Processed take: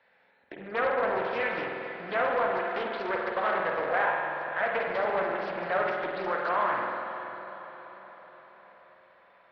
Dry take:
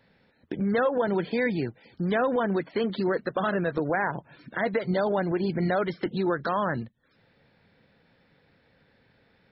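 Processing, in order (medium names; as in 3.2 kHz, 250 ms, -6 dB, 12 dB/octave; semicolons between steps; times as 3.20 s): single-diode clipper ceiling -20.5 dBFS; three-band isolator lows -22 dB, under 520 Hz, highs -19 dB, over 3.2 kHz; echo that smears into a reverb 518 ms, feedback 51%, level -11.5 dB; spring tank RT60 2.1 s, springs 47 ms, chirp 25 ms, DRR -0.5 dB; loudspeaker Doppler distortion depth 0.23 ms; trim +1.5 dB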